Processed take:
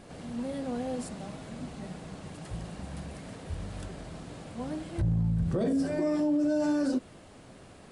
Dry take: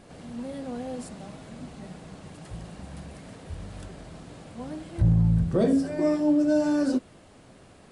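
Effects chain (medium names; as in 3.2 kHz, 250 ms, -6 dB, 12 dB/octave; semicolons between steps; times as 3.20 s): peak limiter -22 dBFS, peak gain reduction 9.5 dB; trim +1 dB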